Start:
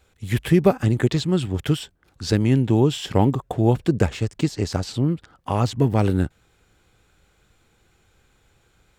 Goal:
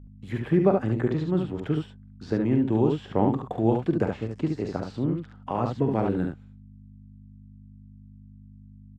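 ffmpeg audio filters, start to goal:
-filter_complex "[0:a]highpass=160,aemphasis=mode=reproduction:type=cd,agate=range=-33dB:threshold=-44dB:ratio=3:detection=peak,highshelf=f=8.5k:g=-12,acrossover=split=590|1800[a][b][c];[c]acompressor=threshold=-48dB:ratio=6[d];[a][b][d]amix=inputs=3:normalize=0,aeval=exprs='val(0)+0.01*(sin(2*PI*50*n/s)+sin(2*PI*2*50*n/s)/2+sin(2*PI*3*50*n/s)/3+sin(2*PI*4*50*n/s)/4+sin(2*PI*5*50*n/s)/5)':c=same,aecho=1:1:45|71:0.316|0.596,volume=-4.5dB"

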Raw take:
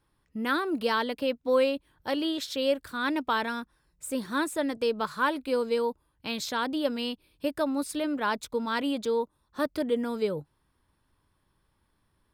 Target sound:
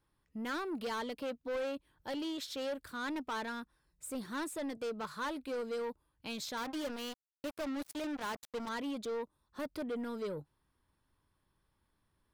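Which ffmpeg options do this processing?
-filter_complex "[0:a]asettb=1/sr,asplit=3[a][b][c];[a]atrim=end=6.574[d];[b]atrim=start=6.57:end=8.69,asetpts=PTS-STARTPTS,afade=t=in:d=0.004:c=qsin,afade=t=out:st=2.116:d=0.004:c=qsin,acrusher=bits=4:mix=0:aa=0.5[e];[c]atrim=start=8.686[f];[d][e]acrossfade=d=0.004:c1=hsin:c2=qsin[g];[g][f]acrossfade=d=0.004:c1=qsin:c2=hsin,asoftclip=type=tanh:threshold=-27.5dB,volume=-6dB"

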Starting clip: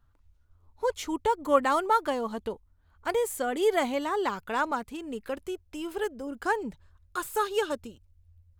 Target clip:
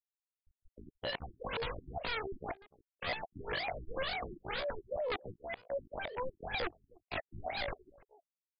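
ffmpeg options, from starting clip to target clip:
-filter_complex "[0:a]equalizer=f=380:t=o:w=0.42:g=12.5,alimiter=limit=-18.5dB:level=0:latency=1:release=120,afftfilt=real='re*gte(hypot(re,im),0.0447)':imag='im*gte(hypot(re,im),0.0447)':win_size=1024:overlap=0.75,aresample=16000,aeval=exprs='(mod(23.7*val(0)+1,2)-1)/23.7':c=same,aresample=44100,asetrate=80880,aresample=44100,atempo=0.545254,bass=f=250:g=4,treble=f=4k:g=-4,asplit=2[a][b];[b]adelay=297.4,volume=-22dB,highshelf=f=4k:g=-6.69[c];[a][c]amix=inputs=2:normalize=0,afftfilt=real='re*lt(b*sr/1024,340*pow(5200/340,0.5+0.5*sin(2*PI*2*pts/sr)))':imag='im*lt(b*sr/1024,340*pow(5200/340,0.5+0.5*sin(2*PI*2*pts/sr)))':win_size=1024:overlap=0.75,volume=-1dB"

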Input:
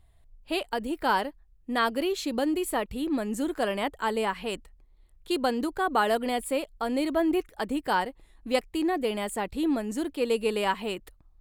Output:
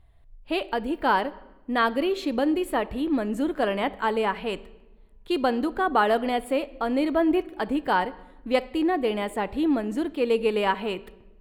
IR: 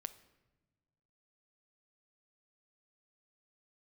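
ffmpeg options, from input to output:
-filter_complex "[0:a]asplit=2[a][b];[1:a]atrim=start_sample=2205,lowpass=3.9k[c];[b][c]afir=irnorm=-1:irlink=0,volume=9dB[d];[a][d]amix=inputs=2:normalize=0,volume=-6dB"

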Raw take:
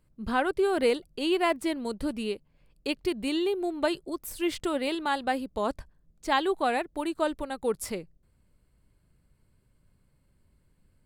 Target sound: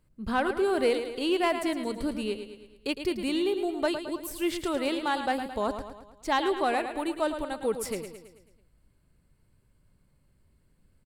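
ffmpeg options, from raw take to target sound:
-af "aecho=1:1:109|218|327|436|545|654:0.335|0.174|0.0906|0.0471|0.0245|0.0127,asoftclip=type=tanh:threshold=-14dB"

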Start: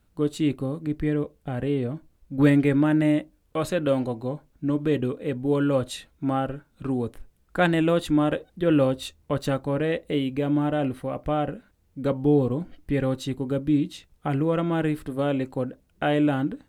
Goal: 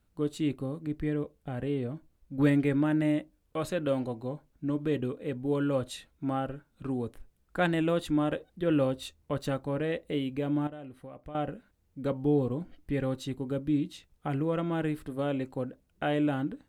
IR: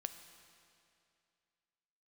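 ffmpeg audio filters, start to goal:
-filter_complex "[0:a]asettb=1/sr,asplit=3[a][b][c];[a]atrim=end=10.674[d];[b]atrim=start=10.67:end=11.35,asetpts=PTS-STARTPTS,afade=t=in:d=0.004:c=qsin,afade=t=out:st=0.676:d=0.004:c=qsin,acompressor=threshold=-39dB:ratio=3[e];[c]atrim=start=11.346[f];[d][e]acrossfade=d=0.004:c1=hsin:c2=qsin[g];[g][f]acrossfade=d=0.004:c1=qsin:c2=hsin,volume=-6dB"

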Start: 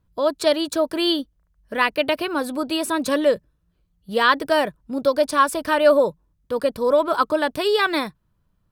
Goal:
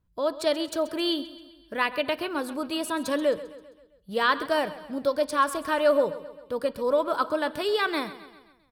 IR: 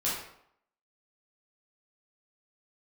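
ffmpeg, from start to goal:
-filter_complex "[0:a]aecho=1:1:132|264|396|528|660:0.168|0.0873|0.0454|0.0236|0.0123,asplit=2[a][b];[1:a]atrim=start_sample=2205,lowpass=5k[c];[b][c]afir=irnorm=-1:irlink=0,volume=-24dB[d];[a][d]amix=inputs=2:normalize=0,volume=-6.5dB"

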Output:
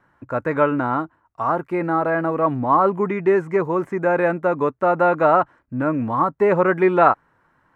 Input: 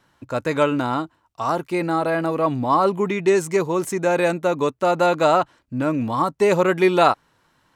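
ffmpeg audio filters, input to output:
-filter_complex "[0:a]acrossover=split=4100[a][b];[b]acompressor=threshold=-47dB:ratio=4:attack=1:release=60[c];[a][c]amix=inputs=2:normalize=0,highshelf=f=2.5k:t=q:w=1.5:g=-13.5"

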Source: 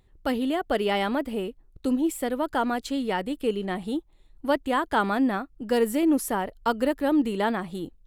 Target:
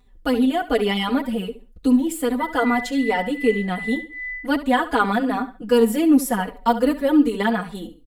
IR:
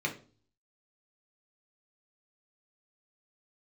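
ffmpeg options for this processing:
-filter_complex "[0:a]aecho=1:1:4.1:0.72,asettb=1/sr,asplit=3[a][b][c];[a]atrim=end=2.404[d];[b]atrim=start=2.4:end=4.46,asetpts=PTS-STARTPTS,afade=t=in:d=0.004:c=qsin,afade=t=out:st=2.056:d=0.004:c=qsin,aeval=exprs='val(0)+0.02*sin(2*PI*2000*n/s)':c=same[e];[c]atrim=start=4.456[f];[d][e]acrossfade=d=0.004:c1=hsin:c2=qsin[g];[g][f]acrossfade=d=0.004:c1=qsin:c2=hsin,aecho=1:1:69|138|207:0.2|0.0579|0.0168,asplit=2[h][i];[i]adelay=4.5,afreqshift=-2.6[j];[h][j]amix=inputs=2:normalize=1,volume=5.5dB"

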